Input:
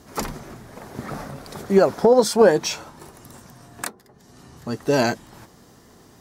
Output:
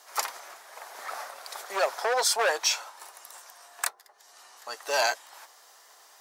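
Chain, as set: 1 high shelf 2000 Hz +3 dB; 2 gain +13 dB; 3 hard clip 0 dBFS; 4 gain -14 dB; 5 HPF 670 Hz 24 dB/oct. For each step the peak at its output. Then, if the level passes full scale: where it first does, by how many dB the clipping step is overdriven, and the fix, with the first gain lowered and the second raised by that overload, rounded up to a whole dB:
-4.5, +8.5, 0.0, -14.0, -11.0 dBFS; step 2, 8.5 dB; step 2 +4 dB, step 4 -5 dB

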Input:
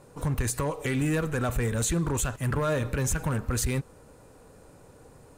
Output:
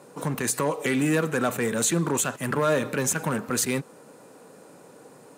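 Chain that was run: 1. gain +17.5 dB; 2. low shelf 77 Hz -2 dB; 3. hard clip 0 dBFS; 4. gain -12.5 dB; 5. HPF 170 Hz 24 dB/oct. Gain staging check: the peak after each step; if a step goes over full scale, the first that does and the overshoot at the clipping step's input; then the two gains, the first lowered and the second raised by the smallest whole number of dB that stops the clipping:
-3.5, -2.5, -2.5, -15.0, -11.0 dBFS; no overload

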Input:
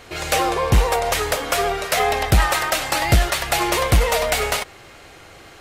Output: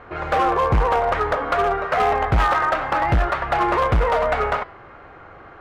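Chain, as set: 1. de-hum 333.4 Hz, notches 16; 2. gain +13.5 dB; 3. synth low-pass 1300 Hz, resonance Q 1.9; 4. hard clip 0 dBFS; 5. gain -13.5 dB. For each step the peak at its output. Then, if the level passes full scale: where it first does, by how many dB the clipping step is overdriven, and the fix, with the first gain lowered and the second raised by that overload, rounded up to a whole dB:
-5.0, +8.5, +9.0, 0.0, -13.5 dBFS; step 2, 9.0 dB; step 2 +4.5 dB, step 5 -4.5 dB

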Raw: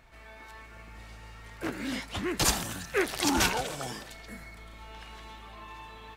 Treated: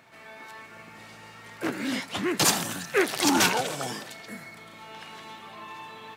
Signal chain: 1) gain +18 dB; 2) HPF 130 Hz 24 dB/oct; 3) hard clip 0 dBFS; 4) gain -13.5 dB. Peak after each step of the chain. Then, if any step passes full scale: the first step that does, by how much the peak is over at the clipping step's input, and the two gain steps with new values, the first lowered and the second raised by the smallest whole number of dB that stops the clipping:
+8.0, +7.5, 0.0, -13.5 dBFS; step 1, 7.5 dB; step 1 +10 dB, step 4 -5.5 dB

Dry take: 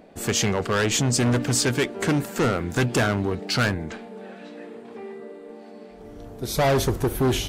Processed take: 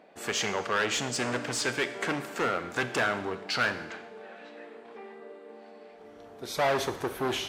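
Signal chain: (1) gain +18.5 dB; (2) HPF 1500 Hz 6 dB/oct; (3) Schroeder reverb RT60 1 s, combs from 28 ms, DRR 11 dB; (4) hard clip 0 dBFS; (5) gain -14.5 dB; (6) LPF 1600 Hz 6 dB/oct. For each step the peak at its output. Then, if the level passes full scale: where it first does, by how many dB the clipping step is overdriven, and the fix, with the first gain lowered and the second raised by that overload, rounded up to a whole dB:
+6.5, +6.0, +6.0, 0.0, -14.5, -16.0 dBFS; step 1, 6.0 dB; step 1 +12.5 dB, step 5 -8.5 dB

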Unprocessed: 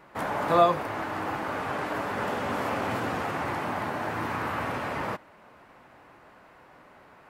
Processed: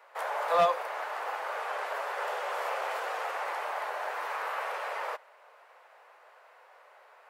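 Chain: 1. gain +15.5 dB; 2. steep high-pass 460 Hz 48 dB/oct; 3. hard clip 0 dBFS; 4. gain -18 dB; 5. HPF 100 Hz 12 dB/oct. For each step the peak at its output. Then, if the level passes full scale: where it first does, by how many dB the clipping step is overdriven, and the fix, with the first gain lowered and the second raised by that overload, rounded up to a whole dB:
+6.0, +6.5, 0.0, -18.0, -16.0 dBFS; step 1, 6.5 dB; step 1 +8.5 dB, step 4 -11 dB

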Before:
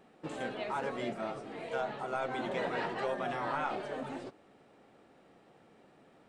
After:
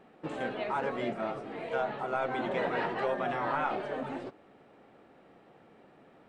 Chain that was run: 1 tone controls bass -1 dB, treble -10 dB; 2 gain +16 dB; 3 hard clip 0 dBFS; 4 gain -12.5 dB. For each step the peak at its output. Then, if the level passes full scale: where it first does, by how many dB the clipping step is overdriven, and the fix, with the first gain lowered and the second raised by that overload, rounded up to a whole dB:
-21.5, -5.5, -5.5, -18.0 dBFS; no overload

